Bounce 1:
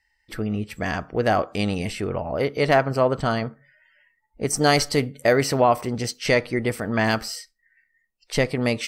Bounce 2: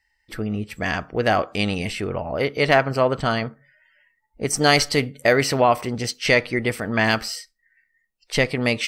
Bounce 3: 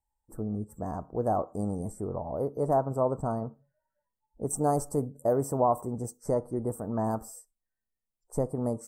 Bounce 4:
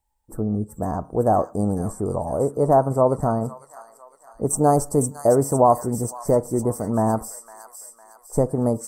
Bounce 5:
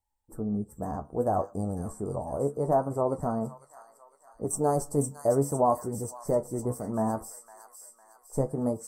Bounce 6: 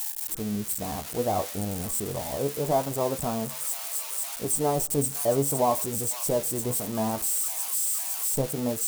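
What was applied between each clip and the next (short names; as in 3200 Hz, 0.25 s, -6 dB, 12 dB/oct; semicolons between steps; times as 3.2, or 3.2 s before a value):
dynamic EQ 2700 Hz, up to +6 dB, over -38 dBFS, Q 0.78
elliptic band-stop 980–8000 Hz, stop band 80 dB; gain -6.5 dB
thin delay 0.506 s, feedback 50%, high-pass 2100 Hz, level -3.5 dB; gain +9 dB
flange 0.67 Hz, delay 9.9 ms, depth 6.1 ms, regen +48%; gain -4 dB
switching spikes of -22.5 dBFS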